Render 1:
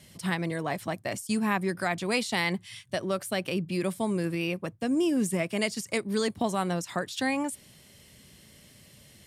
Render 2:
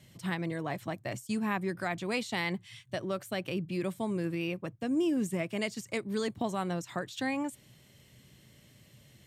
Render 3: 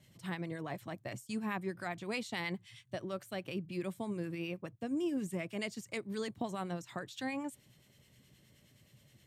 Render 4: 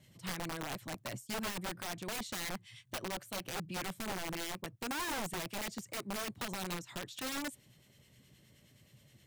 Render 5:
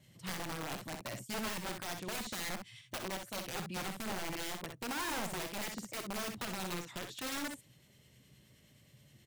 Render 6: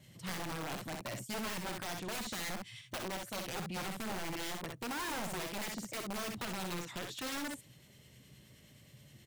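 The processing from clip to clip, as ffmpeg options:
-af "equalizer=f=125:t=o:w=0.33:g=9,equalizer=f=315:t=o:w=0.33:g=3,equalizer=f=5k:t=o:w=0.33:g=-5,equalizer=f=10k:t=o:w=0.33:g=-10,volume=-5dB"
-filter_complex "[0:a]acrossover=split=1200[a][b];[a]aeval=exprs='val(0)*(1-0.5/2+0.5/2*cos(2*PI*9.5*n/s))':c=same[c];[b]aeval=exprs='val(0)*(1-0.5/2-0.5/2*cos(2*PI*9.5*n/s))':c=same[d];[c][d]amix=inputs=2:normalize=0,volume=-3.5dB"
-af "aeval=exprs='(mod(50.1*val(0)+1,2)-1)/50.1':c=same,volume=1dB"
-af "aecho=1:1:49|63:0.224|0.473,volume=-1dB"
-af "asoftclip=type=tanh:threshold=-39.5dB,volume=4dB"

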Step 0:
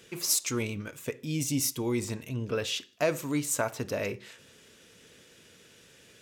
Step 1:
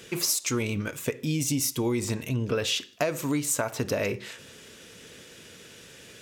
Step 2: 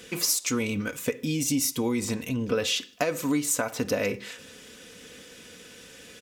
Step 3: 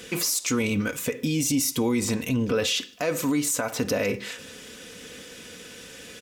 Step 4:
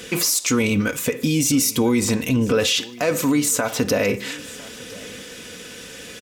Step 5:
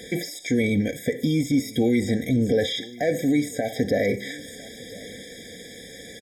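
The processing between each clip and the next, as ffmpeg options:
-af "acompressor=threshold=-31dB:ratio=10,volume=8dB"
-af "aecho=1:1:4:0.47,acrusher=bits=11:mix=0:aa=0.000001"
-af "alimiter=limit=-20.5dB:level=0:latency=1:release=24,volume=4.5dB"
-af "aecho=1:1:1005:0.0841,volume=5.5dB"
-filter_complex "[0:a]acrossover=split=3600[a][b];[b]acompressor=threshold=-34dB:ratio=4:attack=1:release=60[c];[a][c]amix=inputs=2:normalize=0,afftfilt=real='re*eq(mod(floor(b*sr/1024/790),2),0)':imag='im*eq(mod(floor(b*sr/1024/790),2),0)':win_size=1024:overlap=0.75,volume=-2dB"

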